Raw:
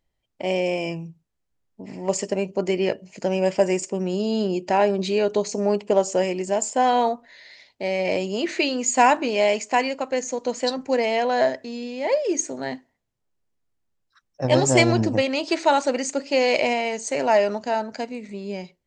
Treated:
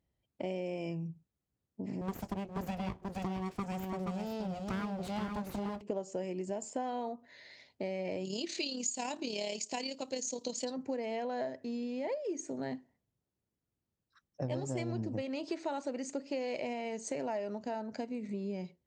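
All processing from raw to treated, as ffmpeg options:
ffmpeg -i in.wav -filter_complex "[0:a]asettb=1/sr,asplit=3[link_01][link_02][link_03];[link_01]atrim=end=2.014[link_04];[link_02]atrim=start=2.01:end=5.81,asetpts=PTS-STARTPTS,afade=type=in:duration=0.004:curve=qsin,afade=type=out:start_time=3.796:duration=0.004:curve=qsin,aeval=exprs='abs(val(0))':channel_layout=same,aecho=1:1:477:0.501,atrim=end_sample=167580[link_05];[link_03]atrim=start=5.806[link_06];[link_04][link_05]acrossfade=duration=0.004:curve1=hsin:curve2=qsin[link_07];[link_07][link_06]acrossfade=duration=0.004:curve1=qsin:curve2=hsin,asettb=1/sr,asplit=3[link_08][link_09][link_10];[link_08]atrim=end=8.254[link_11];[link_09]atrim=start=8.25:end=10.65,asetpts=PTS-STARTPTS,afade=type=in:duration=0.004:curve=qsin,afade=type=out:start_time=2.396:duration=0.004:curve=qsin,tremolo=f=36:d=0.519,highshelf=frequency=2600:width_type=q:width=1.5:gain=14[link_12];[link_10]atrim=start=10.646[link_13];[link_11][link_12]acrossfade=duration=0.004:curve1=hsin:curve2=qsin[link_14];[link_14][link_13]acrossfade=duration=0.004:curve1=qsin:curve2=hsin,highpass=70,lowshelf=frequency=500:gain=11.5,acompressor=threshold=-26dB:ratio=5,volume=-9dB" out.wav

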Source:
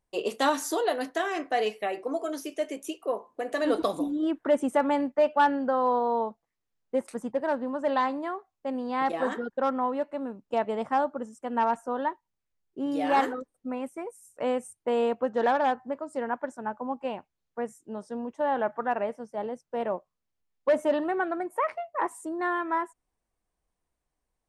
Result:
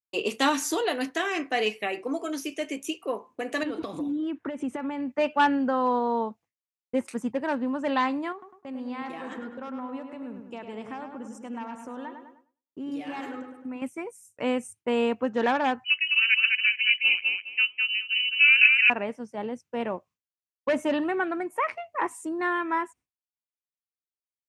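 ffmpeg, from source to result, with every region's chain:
ffmpeg -i in.wav -filter_complex "[0:a]asettb=1/sr,asplit=3[link_01][link_02][link_03];[link_01]atrim=end=3.634[link_04];[link_02]atrim=start=3.63:end=5.1,asetpts=PTS-STARTPTS,afade=type=in:duration=0.004:curve=qsin,afade=type=out:start_time=1.466:duration=0.004:curve=qsin,acompressor=threshold=-29dB:ratio=12:attack=3.2:release=140:knee=1:detection=peak,lowpass=frequency=3100:poles=1[link_05];[link_03]atrim=start=5.096[link_06];[link_04][link_05]acrossfade=duration=0.004:curve1=hsin:curve2=qsin[link_07];[link_07][link_06]acrossfade=duration=0.004:curve1=qsin:curve2=hsin,asettb=1/sr,asplit=3[link_08][link_09][link_10];[link_08]atrim=end=8.324[link_11];[link_09]atrim=start=8.32:end=13.82,asetpts=PTS-STARTPTS,afade=type=in:duration=0.004:curve=qsin,afade=type=out:start_time=5.496:duration=0.004:curve=qsin,acompressor=threshold=-39dB:ratio=3:attack=3.2:release=140:knee=1:detection=peak,asplit=2[link_12][link_13];[link_13]adelay=102,lowpass=frequency=3400:poles=1,volume=-6.5dB,asplit=2[link_14][link_15];[link_15]adelay=102,lowpass=frequency=3400:poles=1,volume=0.55,asplit=2[link_16][link_17];[link_17]adelay=102,lowpass=frequency=3400:poles=1,volume=0.55,asplit=2[link_18][link_19];[link_19]adelay=102,lowpass=frequency=3400:poles=1,volume=0.55,asplit=2[link_20][link_21];[link_21]adelay=102,lowpass=frequency=3400:poles=1,volume=0.55,asplit=2[link_22][link_23];[link_23]adelay=102,lowpass=frequency=3400:poles=1,volume=0.55,asplit=2[link_24][link_25];[link_25]adelay=102,lowpass=frequency=3400:poles=1,volume=0.55[link_26];[link_12][link_14][link_16][link_18][link_20][link_22][link_24][link_26]amix=inputs=8:normalize=0,atrim=end_sample=242550[link_27];[link_10]atrim=start=13.816[link_28];[link_11][link_27]acrossfade=duration=0.004:curve1=hsin:curve2=qsin[link_29];[link_29][link_28]acrossfade=duration=0.004:curve1=qsin:curve2=hsin,asettb=1/sr,asplit=3[link_30][link_31][link_32];[link_30]atrim=end=15.844[link_33];[link_31]atrim=start=15.84:end=18.9,asetpts=PTS-STARTPTS,afade=type=in:duration=0.004:curve=qsin,afade=type=out:start_time=3.056:duration=0.004:curve=qsin,aecho=1:1:207|414|621:0.708|0.149|0.0312,atrim=end_sample=134946,lowpass=frequency=2700:width_type=q:width=0.5098,lowpass=frequency=2700:width_type=q:width=0.6013,lowpass=frequency=2700:width_type=q:width=0.9,lowpass=frequency=2700:width_type=q:width=2.563,afreqshift=-3200[link_34];[link_32]atrim=start=18.896[link_35];[link_33][link_34]acrossfade=duration=0.004:curve1=hsin:curve2=qsin[link_36];[link_36][link_35]acrossfade=duration=0.004:curve1=qsin:curve2=hsin,highpass=70,agate=range=-33dB:threshold=-49dB:ratio=3:detection=peak,equalizer=frequency=100:width_type=o:width=0.67:gain=9,equalizer=frequency=250:width_type=o:width=0.67:gain=4,equalizer=frequency=630:width_type=o:width=0.67:gain=-5,equalizer=frequency=2500:width_type=o:width=0.67:gain=8,equalizer=frequency=6300:width_type=o:width=0.67:gain=4,volume=1dB" out.wav

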